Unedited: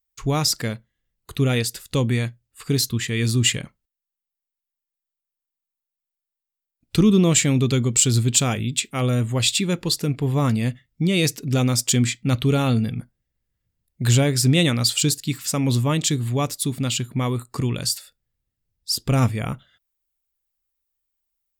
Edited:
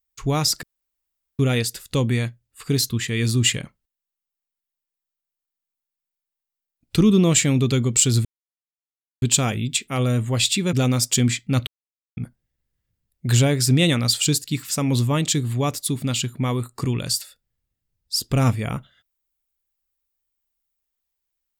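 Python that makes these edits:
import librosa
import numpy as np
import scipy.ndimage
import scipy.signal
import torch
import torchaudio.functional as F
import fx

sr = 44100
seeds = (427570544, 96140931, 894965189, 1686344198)

y = fx.edit(x, sr, fx.room_tone_fill(start_s=0.63, length_s=0.76),
    fx.insert_silence(at_s=8.25, length_s=0.97),
    fx.cut(start_s=9.76, length_s=1.73),
    fx.silence(start_s=12.43, length_s=0.5), tone=tone)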